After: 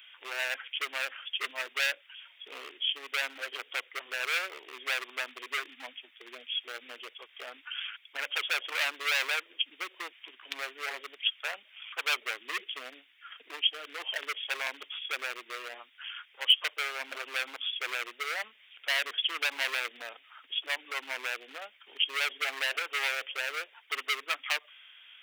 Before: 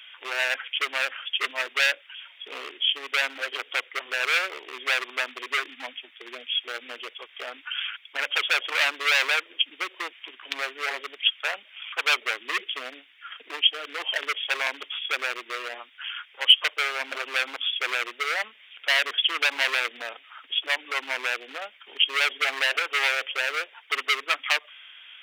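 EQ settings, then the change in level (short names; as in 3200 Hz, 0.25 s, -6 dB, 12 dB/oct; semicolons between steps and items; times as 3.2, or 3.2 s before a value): high shelf 9800 Hz +10 dB; -7.5 dB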